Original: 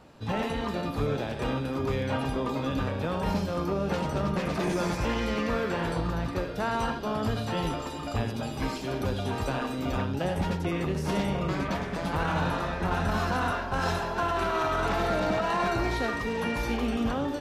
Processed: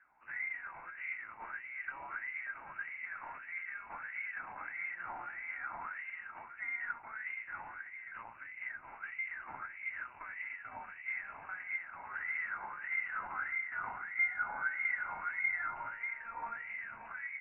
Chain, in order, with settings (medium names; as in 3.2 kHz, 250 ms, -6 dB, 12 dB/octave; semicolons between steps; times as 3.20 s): comb filter that takes the minimum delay 1.5 ms; wah-wah 1.6 Hz 700–1900 Hz, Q 11; frequency inversion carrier 2.8 kHz; trim +3.5 dB